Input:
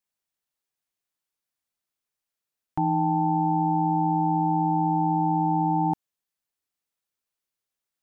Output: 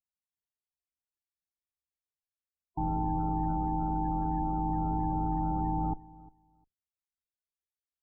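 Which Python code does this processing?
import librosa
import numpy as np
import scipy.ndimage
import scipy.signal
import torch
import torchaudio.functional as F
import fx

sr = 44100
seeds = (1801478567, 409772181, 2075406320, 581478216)

p1 = fx.octave_divider(x, sr, octaves=2, level_db=1.0)
p2 = fx.peak_eq(p1, sr, hz=110.0, db=-5.0, octaves=0.71, at=(3.54, 4.69))
p3 = np.clip(p2, -10.0 ** (-17.5 / 20.0), 10.0 ** (-17.5 / 20.0))
p4 = fx.spec_topn(p3, sr, count=32)
p5 = p4 + fx.echo_feedback(p4, sr, ms=353, feedback_pct=17, wet_db=-21.5, dry=0)
y = p5 * librosa.db_to_amplitude(-7.5)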